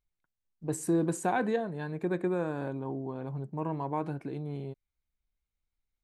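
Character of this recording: noise floor -87 dBFS; spectral tilt -5.5 dB/oct

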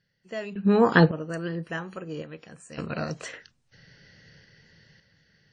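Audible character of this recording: random-step tremolo 1.8 Hz, depth 95%; WMA

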